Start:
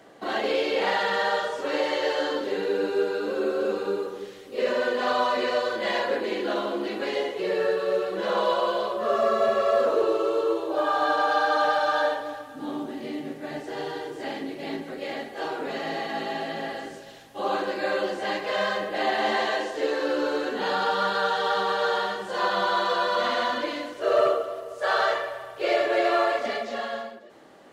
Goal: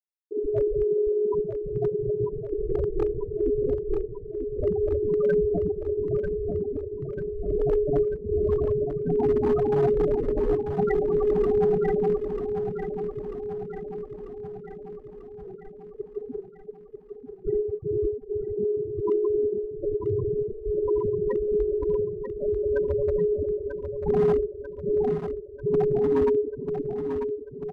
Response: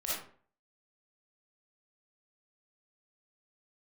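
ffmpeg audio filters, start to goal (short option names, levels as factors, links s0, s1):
-filter_complex "[0:a]acrossover=split=360[s0][s1];[s0]acompressor=threshold=0.0141:ratio=2.5[s2];[s2][s1]amix=inputs=2:normalize=0,aeval=exprs='0.316*(cos(1*acos(clip(val(0)/0.316,-1,1)))-cos(1*PI/2))+0.0178*(cos(2*acos(clip(val(0)/0.316,-1,1)))-cos(2*PI/2))+0.00794*(cos(3*acos(clip(val(0)/0.316,-1,1)))-cos(3*PI/2))+0.141*(cos(6*acos(clip(val(0)/0.316,-1,1)))-cos(6*PI/2))':c=same,aresample=16000,asoftclip=type=tanh:threshold=0.211,aresample=44100,afreqshift=-420,afftfilt=real='re*gte(hypot(re,im),0.355)':imag='im*gte(hypot(re,im),0.355)':win_size=1024:overlap=0.75,volume=7.94,asoftclip=hard,volume=0.126,aecho=1:1:942|1884|2826|3768|4710|5652|6594|7536:0.447|0.264|0.155|0.0917|0.0541|0.0319|0.0188|0.0111,volume=1.26"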